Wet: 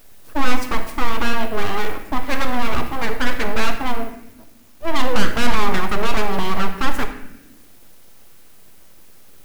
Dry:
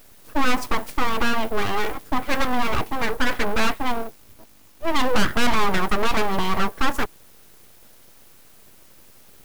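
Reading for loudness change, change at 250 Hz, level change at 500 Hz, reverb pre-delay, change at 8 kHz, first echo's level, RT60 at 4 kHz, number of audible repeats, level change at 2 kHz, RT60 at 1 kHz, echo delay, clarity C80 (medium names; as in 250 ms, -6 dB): +0.5 dB, +1.0 dB, +1.0 dB, 30 ms, +0.5 dB, no echo, 0.65 s, no echo, +1.0 dB, 0.75 s, no echo, 11.0 dB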